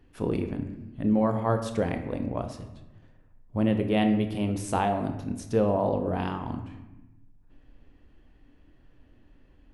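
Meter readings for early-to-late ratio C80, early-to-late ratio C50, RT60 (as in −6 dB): 11.0 dB, 9.0 dB, 1.0 s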